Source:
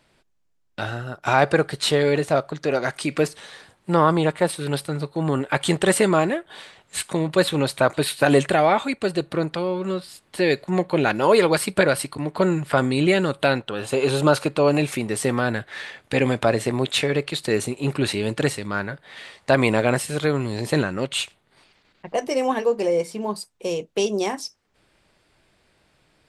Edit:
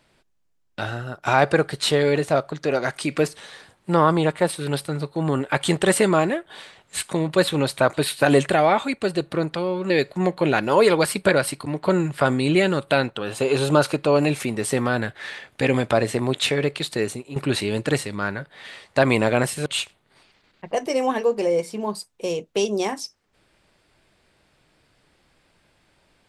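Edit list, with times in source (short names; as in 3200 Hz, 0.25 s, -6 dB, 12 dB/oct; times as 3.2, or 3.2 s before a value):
9.9–10.42 cut
17.38–17.88 fade out, to -12.5 dB
20.18–21.07 cut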